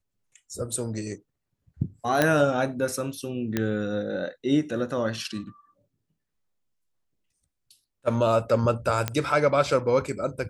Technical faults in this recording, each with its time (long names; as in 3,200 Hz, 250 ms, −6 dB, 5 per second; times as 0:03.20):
0:02.22: click −6 dBFS
0:03.57: click −11 dBFS
0:09.08: click −10 dBFS